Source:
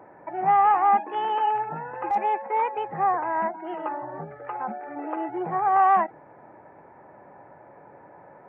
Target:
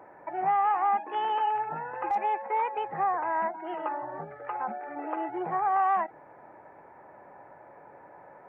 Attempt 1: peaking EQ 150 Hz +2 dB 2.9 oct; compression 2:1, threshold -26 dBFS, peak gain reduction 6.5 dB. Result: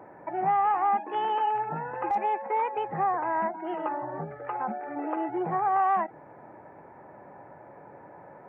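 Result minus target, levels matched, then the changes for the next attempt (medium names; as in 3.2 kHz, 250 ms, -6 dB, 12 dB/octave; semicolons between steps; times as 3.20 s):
125 Hz band +7.0 dB
change: peaking EQ 150 Hz -6.5 dB 2.9 oct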